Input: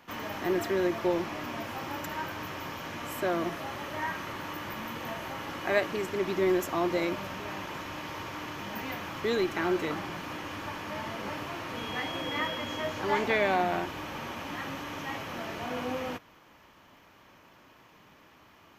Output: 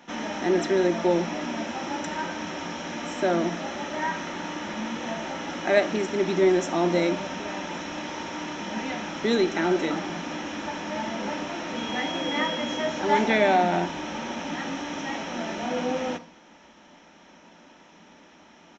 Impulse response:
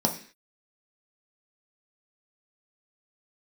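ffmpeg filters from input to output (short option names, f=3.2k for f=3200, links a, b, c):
-filter_complex "[0:a]equalizer=f=4.5k:w=0.51:g=4,asplit=2[a][b];[1:a]atrim=start_sample=2205,highshelf=f=8.5k:g=10.5[c];[b][c]afir=irnorm=-1:irlink=0,volume=-14dB[d];[a][d]amix=inputs=2:normalize=0,aresample=16000,aresample=44100"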